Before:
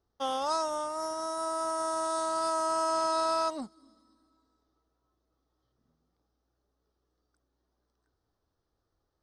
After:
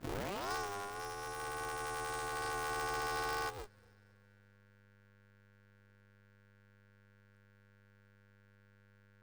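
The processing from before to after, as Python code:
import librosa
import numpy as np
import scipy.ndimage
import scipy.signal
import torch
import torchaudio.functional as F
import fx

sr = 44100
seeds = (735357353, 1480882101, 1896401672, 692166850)

y = fx.tape_start_head(x, sr, length_s=0.43)
y = fx.dmg_buzz(y, sr, base_hz=100.0, harmonics=15, level_db=-56.0, tilt_db=-2, odd_only=False)
y = y * np.sign(np.sin(2.0 * np.pi * 200.0 * np.arange(len(y)) / sr))
y = y * 10.0 ** (-9.0 / 20.0)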